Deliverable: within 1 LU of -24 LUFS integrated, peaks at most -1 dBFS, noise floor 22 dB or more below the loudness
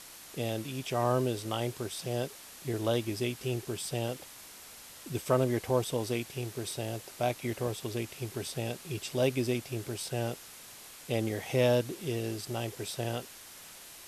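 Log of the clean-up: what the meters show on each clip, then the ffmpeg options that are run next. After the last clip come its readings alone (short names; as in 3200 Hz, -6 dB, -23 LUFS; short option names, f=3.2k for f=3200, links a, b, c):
noise floor -50 dBFS; noise floor target -55 dBFS; loudness -33.0 LUFS; peak -13.0 dBFS; loudness target -24.0 LUFS
-> -af "afftdn=nr=6:nf=-50"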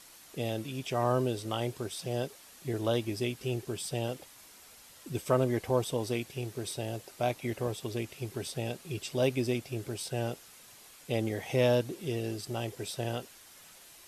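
noise floor -55 dBFS; noise floor target -56 dBFS
-> -af "afftdn=nr=6:nf=-55"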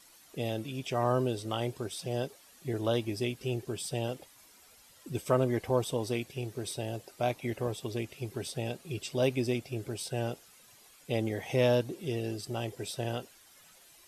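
noise floor -59 dBFS; loudness -33.5 LUFS; peak -13.0 dBFS; loudness target -24.0 LUFS
-> -af "volume=9.5dB"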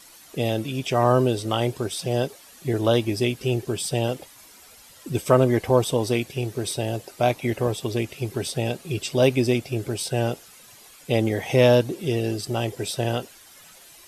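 loudness -24.0 LUFS; peak -3.5 dBFS; noise floor -49 dBFS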